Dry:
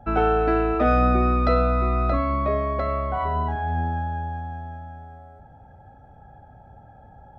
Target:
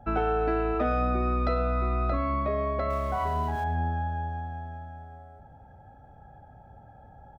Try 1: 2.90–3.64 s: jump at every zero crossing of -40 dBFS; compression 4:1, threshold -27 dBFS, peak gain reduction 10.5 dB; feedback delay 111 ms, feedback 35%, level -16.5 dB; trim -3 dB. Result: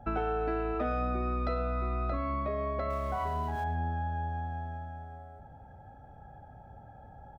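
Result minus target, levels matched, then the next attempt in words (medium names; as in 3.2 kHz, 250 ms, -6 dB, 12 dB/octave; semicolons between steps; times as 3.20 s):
compression: peak gain reduction +5.5 dB
2.90–3.64 s: jump at every zero crossing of -40 dBFS; compression 4:1, threshold -20 dBFS, peak gain reduction 5.5 dB; feedback delay 111 ms, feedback 35%, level -16.5 dB; trim -3 dB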